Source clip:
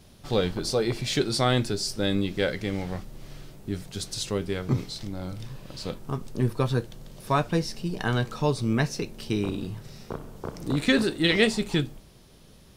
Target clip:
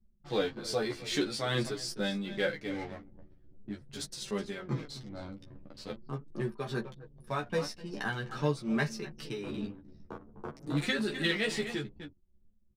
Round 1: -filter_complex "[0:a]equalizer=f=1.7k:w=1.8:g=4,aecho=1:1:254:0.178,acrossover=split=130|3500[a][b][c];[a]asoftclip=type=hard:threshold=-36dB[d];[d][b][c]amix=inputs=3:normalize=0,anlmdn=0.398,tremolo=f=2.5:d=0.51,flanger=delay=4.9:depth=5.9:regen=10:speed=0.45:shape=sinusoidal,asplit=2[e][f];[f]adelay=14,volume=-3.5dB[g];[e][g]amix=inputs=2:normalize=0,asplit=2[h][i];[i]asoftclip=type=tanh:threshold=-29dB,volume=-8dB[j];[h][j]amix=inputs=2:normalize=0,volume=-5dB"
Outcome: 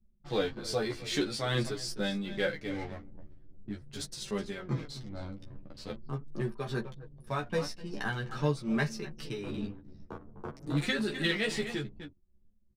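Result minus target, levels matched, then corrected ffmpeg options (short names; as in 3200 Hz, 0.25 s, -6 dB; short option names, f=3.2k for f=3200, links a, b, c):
hard clip: distortion -5 dB
-filter_complex "[0:a]equalizer=f=1.7k:w=1.8:g=4,aecho=1:1:254:0.178,acrossover=split=130|3500[a][b][c];[a]asoftclip=type=hard:threshold=-46.5dB[d];[d][b][c]amix=inputs=3:normalize=0,anlmdn=0.398,tremolo=f=2.5:d=0.51,flanger=delay=4.9:depth=5.9:regen=10:speed=0.45:shape=sinusoidal,asplit=2[e][f];[f]adelay=14,volume=-3.5dB[g];[e][g]amix=inputs=2:normalize=0,asplit=2[h][i];[i]asoftclip=type=tanh:threshold=-29dB,volume=-8dB[j];[h][j]amix=inputs=2:normalize=0,volume=-5dB"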